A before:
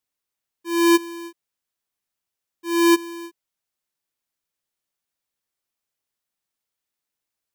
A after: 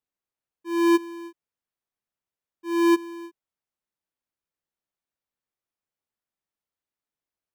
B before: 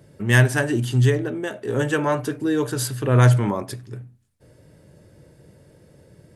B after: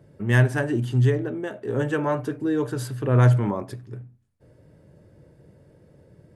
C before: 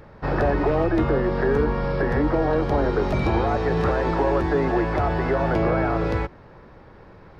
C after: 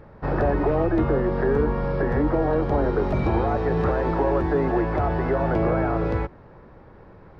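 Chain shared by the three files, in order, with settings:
treble shelf 2.5 kHz -11 dB; normalise loudness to -23 LUFS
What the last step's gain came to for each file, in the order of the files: -2.5 dB, -2.0 dB, 0.0 dB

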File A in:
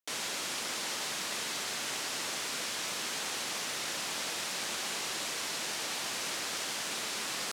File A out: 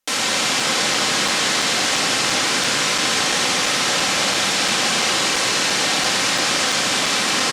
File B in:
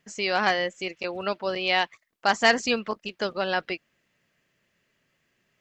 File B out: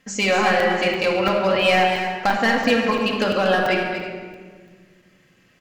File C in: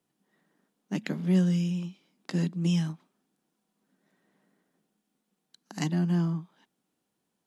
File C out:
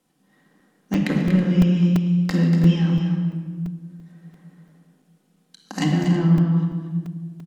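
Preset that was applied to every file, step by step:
low-pass that closes with the level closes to 3 kHz, closed at -24 dBFS; compression 6:1, threshold -26 dBFS; hard clipper -23 dBFS; on a send: multi-tap echo 142/239/324 ms -17.5/-8.5/-15.5 dB; on the sum: simulated room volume 2000 m³, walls mixed, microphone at 2.1 m; crackling interface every 0.34 s, samples 128, zero, from 0.60 s; peak normalisation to -6 dBFS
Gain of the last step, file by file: +14.0 dB, +9.0 dB, +8.0 dB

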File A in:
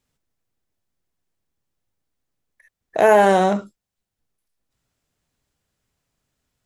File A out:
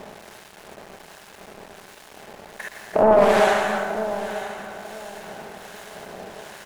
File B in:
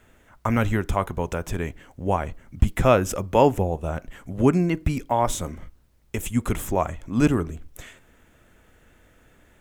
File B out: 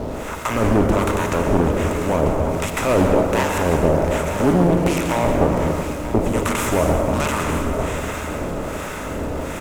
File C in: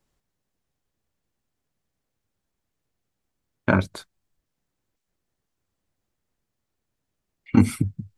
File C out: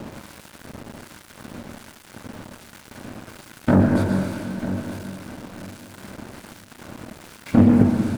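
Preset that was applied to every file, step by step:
spectral levelling over time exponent 0.4; bass shelf 130 Hz -4.5 dB; saturation -9.5 dBFS; harmonic tremolo 1.3 Hz, depth 100%, crossover 910 Hz; plate-style reverb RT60 2.1 s, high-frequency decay 0.6×, pre-delay 105 ms, DRR 2 dB; small samples zeroed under -41 dBFS; feedback delay 943 ms, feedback 25%, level -13 dB; loudspeaker Doppler distortion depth 0.4 ms; normalise loudness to -20 LUFS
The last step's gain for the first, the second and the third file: +2.5 dB, +4.0 dB, +5.5 dB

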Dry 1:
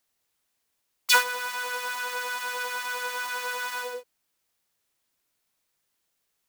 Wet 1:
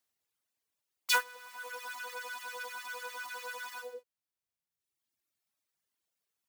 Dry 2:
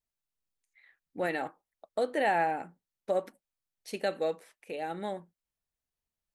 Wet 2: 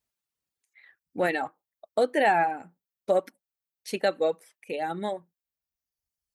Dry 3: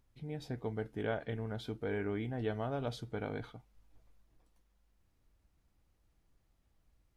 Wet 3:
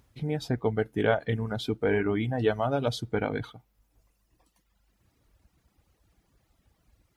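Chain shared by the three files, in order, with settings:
high-pass 52 Hz; reverb removal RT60 1.6 s; in parallel at -10 dB: saturation -16.5 dBFS; on the sum: peak normalisation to -12 dBFS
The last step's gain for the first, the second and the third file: -9.0 dB, +4.0 dB, +10.0 dB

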